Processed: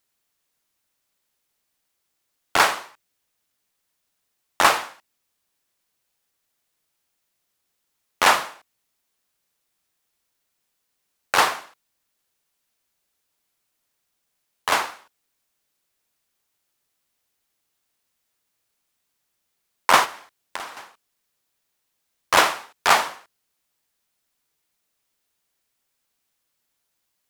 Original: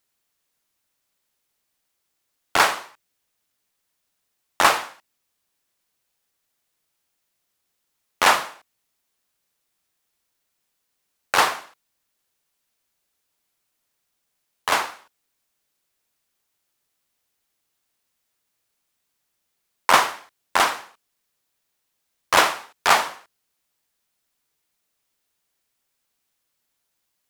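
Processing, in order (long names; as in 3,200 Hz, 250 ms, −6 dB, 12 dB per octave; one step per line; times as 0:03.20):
0:20.04–0:20.77: downward compressor 12 to 1, threshold −30 dBFS, peak gain reduction 17 dB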